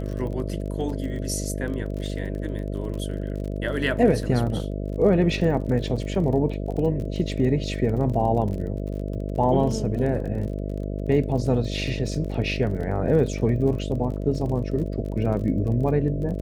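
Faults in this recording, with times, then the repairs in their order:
mains buzz 50 Hz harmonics 13 −29 dBFS
surface crackle 34 per second −32 dBFS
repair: click removal
hum removal 50 Hz, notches 13

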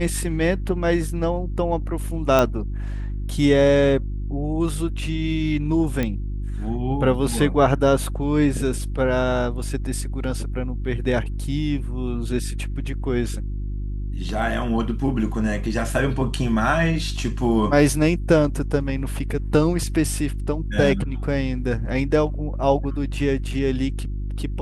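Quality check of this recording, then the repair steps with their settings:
mains hum 50 Hz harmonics 7 −27 dBFS
0:02.39: click −6 dBFS
0:06.03: click −11 dBFS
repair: click removal
hum removal 50 Hz, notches 7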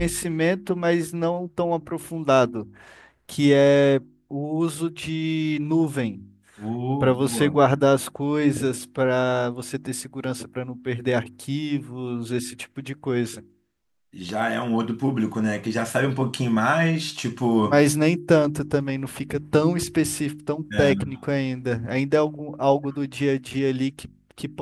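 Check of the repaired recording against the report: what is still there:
none of them is left

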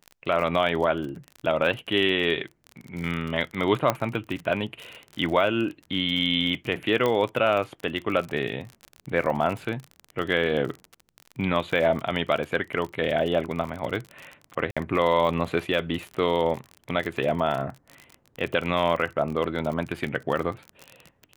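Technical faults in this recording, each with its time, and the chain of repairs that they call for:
surface crackle 41 per second −30 dBFS
0:03.90: click −8 dBFS
0:07.06: click −12 dBFS
0:14.71–0:14.77: drop-out 56 ms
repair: click removal
repair the gap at 0:14.71, 56 ms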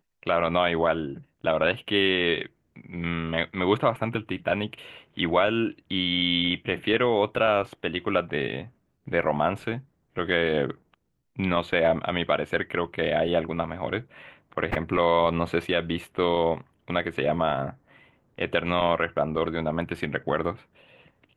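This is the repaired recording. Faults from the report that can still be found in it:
none of them is left

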